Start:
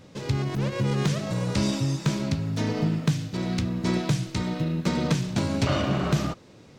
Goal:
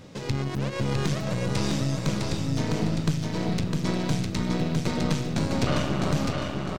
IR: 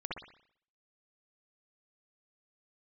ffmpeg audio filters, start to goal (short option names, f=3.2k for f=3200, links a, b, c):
-filter_complex "[0:a]asplit=2[a][b];[b]acompressor=threshold=-39dB:ratio=6,volume=3dB[c];[a][c]amix=inputs=2:normalize=0,aeval=exprs='(tanh(7.08*val(0)+0.75)-tanh(0.75))/7.08':c=same,aecho=1:1:656|1312|1968|2624:0.668|0.227|0.0773|0.0263"